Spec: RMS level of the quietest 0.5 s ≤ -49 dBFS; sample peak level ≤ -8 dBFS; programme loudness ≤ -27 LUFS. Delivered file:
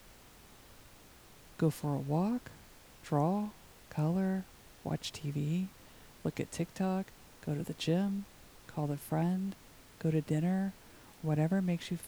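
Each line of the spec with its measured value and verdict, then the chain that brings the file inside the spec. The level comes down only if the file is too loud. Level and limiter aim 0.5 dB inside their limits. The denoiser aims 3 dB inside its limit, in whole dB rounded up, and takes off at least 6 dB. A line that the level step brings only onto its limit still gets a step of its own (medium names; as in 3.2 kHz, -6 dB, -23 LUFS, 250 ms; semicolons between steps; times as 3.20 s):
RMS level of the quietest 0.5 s -57 dBFS: pass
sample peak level -18.5 dBFS: pass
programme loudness -35.0 LUFS: pass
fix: none needed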